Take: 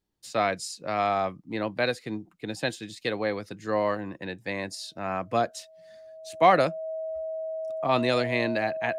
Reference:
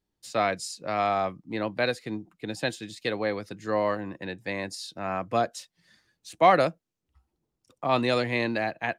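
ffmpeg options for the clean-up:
ffmpeg -i in.wav -af "bandreject=frequency=640:width=30" out.wav

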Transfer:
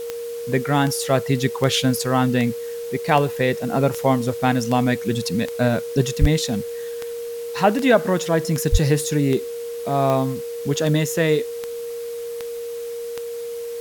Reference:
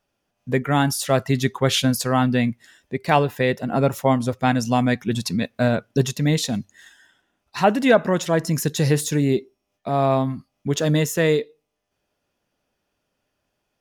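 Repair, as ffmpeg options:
ffmpeg -i in.wav -filter_complex "[0:a]adeclick=threshold=4,bandreject=frequency=470:width=30,asplit=3[link_01][link_02][link_03];[link_01]afade=type=out:start_time=6.2:duration=0.02[link_04];[link_02]highpass=frequency=140:width=0.5412,highpass=frequency=140:width=1.3066,afade=type=in:start_time=6.2:duration=0.02,afade=type=out:start_time=6.32:duration=0.02[link_05];[link_03]afade=type=in:start_time=6.32:duration=0.02[link_06];[link_04][link_05][link_06]amix=inputs=3:normalize=0,asplit=3[link_07][link_08][link_09];[link_07]afade=type=out:start_time=8.71:duration=0.02[link_10];[link_08]highpass=frequency=140:width=0.5412,highpass=frequency=140:width=1.3066,afade=type=in:start_time=8.71:duration=0.02,afade=type=out:start_time=8.83:duration=0.02[link_11];[link_09]afade=type=in:start_time=8.83:duration=0.02[link_12];[link_10][link_11][link_12]amix=inputs=3:normalize=0,afftdn=noise_reduction=30:noise_floor=-30" out.wav

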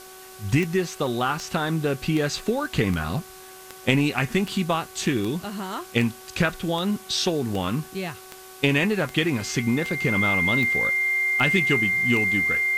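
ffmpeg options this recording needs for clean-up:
ffmpeg -i in.wav -af "adeclick=threshold=4,bandreject=frequency=375.6:width_type=h:width=4,bandreject=frequency=751.2:width_type=h:width=4,bandreject=frequency=1126.8:width_type=h:width=4,bandreject=frequency=1502.4:width_type=h:width=4,bandreject=frequency=2100:width=30,afwtdn=0.0056" out.wav

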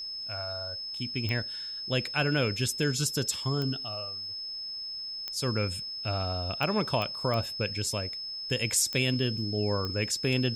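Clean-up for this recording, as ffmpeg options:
ffmpeg -i in.wav -af "adeclick=threshold=4,bandreject=frequency=5200:width=30,agate=range=-21dB:threshold=-30dB" out.wav

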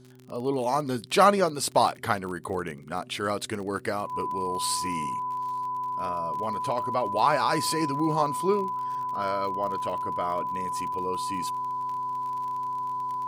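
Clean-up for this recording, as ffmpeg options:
ffmpeg -i in.wav -af "adeclick=threshold=4,bandreject=frequency=126.8:width_type=h:width=4,bandreject=frequency=253.6:width_type=h:width=4,bandreject=frequency=380.4:width_type=h:width=4,bandreject=frequency=1000:width=30" out.wav

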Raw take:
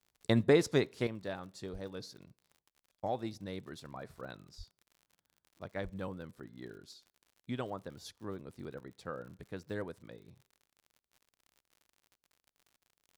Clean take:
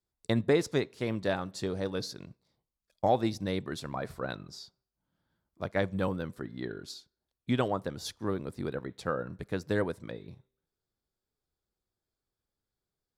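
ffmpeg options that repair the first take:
ffmpeg -i in.wav -filter_complex "[0:a]adeclick=threshold=4,asplit=3[link_01][link_02][link_03];[link_01]afade=type=out:start_time=1.72:duration=0.02[link_04];[link_02]highpass=frequency=140:width=0.5412,highpass=frequency=140:width=1.3066,afade=type=in:start_time=1.72:duration=0.02,afade=type=out:start_time=1.84:duration=0.02[link_05];[link_03]afade=type=in:start_time=1.84:duration=0.02[link_06];[link_04][link_05][link_06]amix=inputs=3:normalize=0,asplit=3[link_07][link_08][link_09];[link_07]afade=type=out:start_time=4.57:duration=0.02[link_10];[link_08]highpass=frequency=140:width=0.5412,highpass=frequency=140:width=1.3066,afade=type=in:start_time=4.57:duration=0.02,afade=type=out:start_time=4.69:duration=0.02[link_11];[link_09]afade=type=in:start_time=4.69:duration=0.02[link_12];[link_10][link_11][link_12]amix=inputs=3:normalize=0,asplit=3[link_13][link_14][link_15];[link_13]afade=type=out:start_time=5.83:duration=0.02[link_16];[link_14]highpass=frequency=140:width=0.5412,highpass=frequency=140:width=1.3066,afade=type=in:start_time=5.83:duration=0.02,afade=type=out:start_time=5.95:duration=0.02[link_17];[link_15]afade=type=in:start_time=5.95:duration=0.02[link_18];[link_16][link_17][link_18]amix=inputs=3:normalize=0,asetnsamples=nb_out_samples=441:pad=0,asendcmd='1.07 volume volume 10dB',volume=0dB" out.wav

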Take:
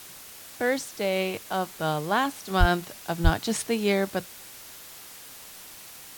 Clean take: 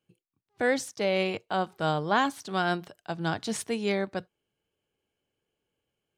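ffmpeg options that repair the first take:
ffmpeg -i in.wav -filter_complex "[0:a]asplit=3[link_01][link_02][link_03];[link_01]afade=type=out:start_time=2.59:duration=0.02[link_04];[link_02]highpass=frequency=140:width=0.5412,highpass=frequency=140:width=1.3066,afade=type=in:start_time=2.59:duration=0.02,afade=type=out:start_time=2.71:duration=0.02[link_05];[link_03]afade=type=in:start_time=2.71:duration=0.02[link_06];[link_04][link_05][link_06]amix=inputs=3:normalize=0,asplit=3[link_07][link_08][link_09];[link_07]afade=type=out:start_time=3.23:duration=0.02[link_10];[link_08]highpass=frequency=140:width=0.5412,highpass=frequency=140:width=1.3066,afade=type=in:start_time=3.23:duration=0.02,afade=type=out:start_time=3.35:duration=0.02[link_11];[link_09]afade=type=in:start_time=3.35:duration=0.02[link_12];[link_10][link_11][link_12]amix=inputs=3:normalize=0,afwtdn=0.0063,asetnsamples=nb_out_samples=441:pad=0,asendcmd='2.5 volume volume -4dB',volume=0dB" out.wav

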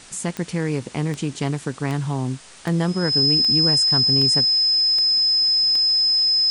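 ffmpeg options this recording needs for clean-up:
ffmpeg -i in.wav -af "adeclick=threshold=4,bandreject=frequency=5100:width=30,afwtdn=0.0079" out.wav

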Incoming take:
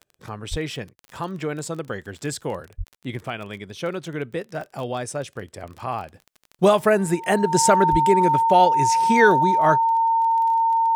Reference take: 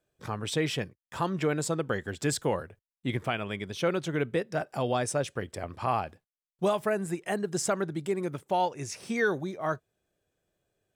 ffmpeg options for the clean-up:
ffmpeg -i in.wav -filter_complex "[0:a]adeclick=threshold=4,bandreject=frequency=910:width=30,asplit=3[link_01][link_02][link_03];[link_01]afade=type=out:start_time=0.5:duration=0.02[link_04];[link_02]highpass=frequency=140:width=0.5412,highpass=frequency=140:width=1.3066,afade=type=in:start_time=0.5:duration=0.02,afade=type=out:start_time=0.62:duration=0.02[link_05];[link_03]afade=type=in:start_time=0.62:duration=0.02[link_06];[link_04][link_05][link_06]amix=inputs=3:normalize=0,asplit=3[link_07][link_08][link_09];[link_07]afade=type=out:start_time=2.77:duration=0.02[link_10];[link_08]highpass=frequency=140:width=0.5412,highpass=frequency=140:width=1.3066,afade=type=in:start_time=2.77:duration=0.02,afade=type=out:start_time=2.89:duration=0.02[link_11];[link_09]afade=type=in:start_time=2.89:duration=0.02[link_12];[link_10][link_11][link_12]amix=inputs=3:normalize=0,asplit=3[link_13][link_14][link_15];[link_13]afade=type=out:start_time=7.91:duration=0.02[link_16];[link_14]highpass=frequency=140:width=0.5412,highpass=frequency=140:width=1.3066,afade=type=in:start_time=7.91:duration=0.02,afade=type=out:start_time=8.03:duration=0.02[link_17];[link_15]afade=type=in:start_time=8.03:duration=0.02[link_18];[link_16][link_17][link_18]amix=inputs=3:normalize=0,asetnsamples=nb_out_samples=441:pad=0,asendcmd='6.14 volume volume -10.5dB',volume=0dB" out.wav

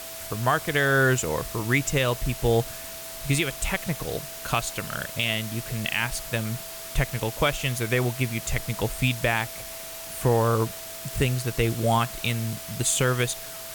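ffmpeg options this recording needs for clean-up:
ffmpeg -i in.wav -af "bandreject=frequency=660:width=30,afftdn=noise_reduction=30:noise_floor=-38" out.wav

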